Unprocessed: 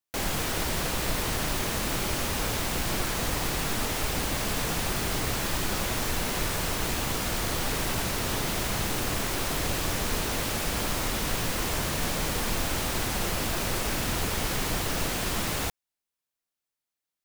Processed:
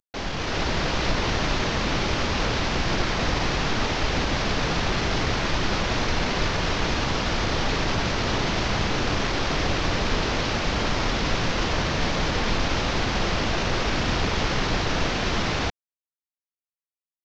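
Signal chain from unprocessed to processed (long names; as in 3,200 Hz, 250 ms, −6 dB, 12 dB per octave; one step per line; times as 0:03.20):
variable-slope delta modulation 32 kbit/s
automatic gain control gain up to 6 dB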